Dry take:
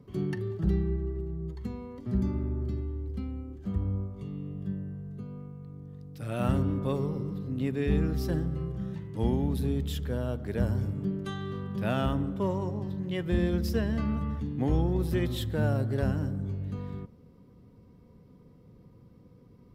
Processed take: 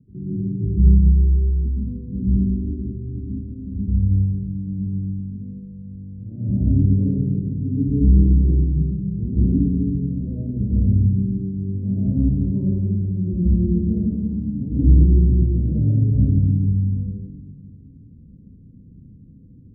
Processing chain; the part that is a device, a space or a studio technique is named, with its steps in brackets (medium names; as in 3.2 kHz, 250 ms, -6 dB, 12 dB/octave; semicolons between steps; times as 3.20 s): next room (low-pass 280 Hz 24 dB/octave; reverberation RT60 1.3 s, pre-delay 110 ms, DRR -9.5 dB)